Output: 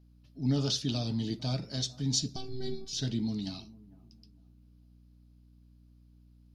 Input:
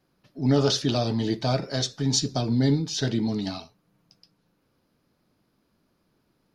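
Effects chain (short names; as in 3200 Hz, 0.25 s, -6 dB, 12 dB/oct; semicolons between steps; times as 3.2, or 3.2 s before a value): 2.36–2.93 robotiser 384 Hz; band shelf 860 Hz -9 dB 2.9 oct; hum 60 Hz, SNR 24 dB; on a send: analogue delay 0.45 s, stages 4096, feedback 30%, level -21 dB; on the sum: gain -5.5 dB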